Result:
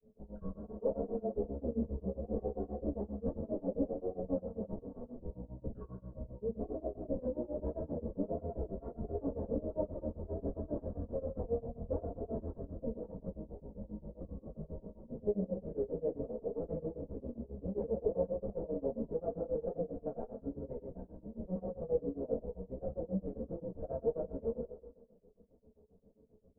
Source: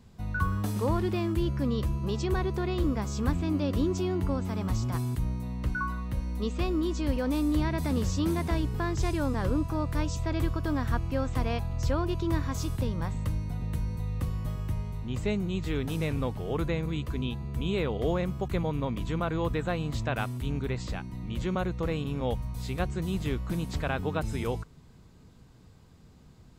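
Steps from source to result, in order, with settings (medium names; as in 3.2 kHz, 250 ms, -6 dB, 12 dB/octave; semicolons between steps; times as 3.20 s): comb filter that takes the minimum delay 4.4 ms; in parallel at -12 dB: sample-and-hold 10×; on the sum: four-pole ladder low-pass 590 Hz, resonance 70%; whistle 430 Hz -63 dBFS; reverberation RT60 1.2 s, pre-delay 3 ms, DRR 2.5 dB; granulator 142 ms, grains 7.5 per s, spray 11 ms, pitch spread up and down by 0 st; three-phase chorus; trim +3 dB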